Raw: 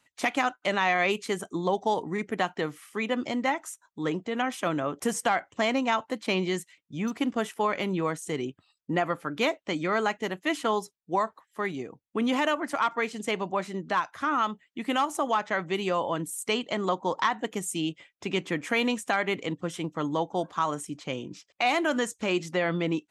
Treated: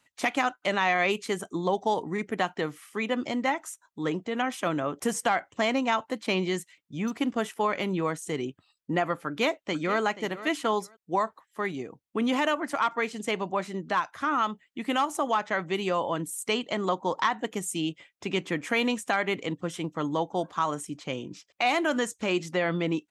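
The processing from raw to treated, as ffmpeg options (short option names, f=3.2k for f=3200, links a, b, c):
-filter_complex "[0:a]asplit=2[a][b];[b]afade=t=in:st=9.26:d=0.01,afade=t=out:st=10:d=0.01,aecho=0:1:480|960:0.188365|0.0282547[c];[a][c]amix=inputs=2:normalize=0"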